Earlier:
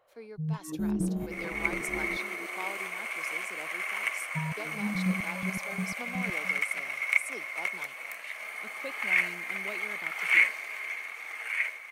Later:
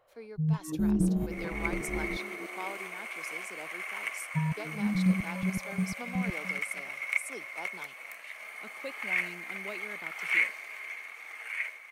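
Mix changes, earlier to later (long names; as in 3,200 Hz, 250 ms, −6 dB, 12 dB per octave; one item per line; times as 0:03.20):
first sound: add low-shelf EQ 160 Hz +8.5 dB
second sound −4.5 dB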